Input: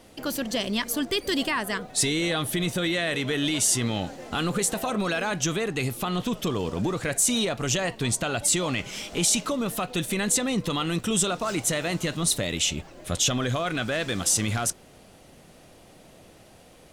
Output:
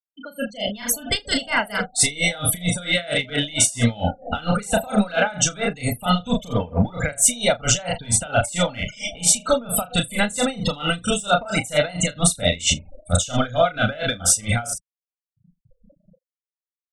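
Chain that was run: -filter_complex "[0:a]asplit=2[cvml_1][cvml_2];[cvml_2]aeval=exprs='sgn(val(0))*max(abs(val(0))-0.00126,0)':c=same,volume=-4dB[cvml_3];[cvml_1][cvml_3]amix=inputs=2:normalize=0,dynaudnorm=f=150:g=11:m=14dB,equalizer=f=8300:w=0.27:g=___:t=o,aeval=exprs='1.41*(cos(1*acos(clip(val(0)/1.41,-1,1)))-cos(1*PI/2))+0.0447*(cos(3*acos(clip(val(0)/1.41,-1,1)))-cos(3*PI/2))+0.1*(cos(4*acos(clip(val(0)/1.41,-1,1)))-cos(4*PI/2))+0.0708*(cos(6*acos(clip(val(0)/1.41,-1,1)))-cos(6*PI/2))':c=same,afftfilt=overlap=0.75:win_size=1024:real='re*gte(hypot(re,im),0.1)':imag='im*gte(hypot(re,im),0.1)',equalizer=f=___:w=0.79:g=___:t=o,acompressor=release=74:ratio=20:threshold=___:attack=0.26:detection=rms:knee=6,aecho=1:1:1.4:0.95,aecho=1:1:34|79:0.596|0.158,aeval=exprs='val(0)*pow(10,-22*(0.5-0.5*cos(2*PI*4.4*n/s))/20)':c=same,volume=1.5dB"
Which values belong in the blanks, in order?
5.5, 140, -6, -12dB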